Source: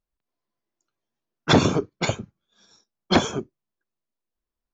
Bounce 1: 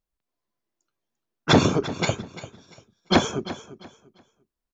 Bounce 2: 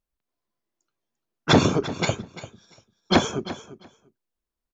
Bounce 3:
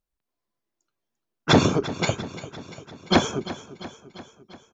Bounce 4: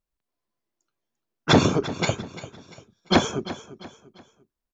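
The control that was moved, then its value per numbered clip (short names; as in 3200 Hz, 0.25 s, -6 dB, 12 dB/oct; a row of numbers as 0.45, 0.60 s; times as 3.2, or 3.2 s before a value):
feedback echo, feedback: 26, 15, 61, 38%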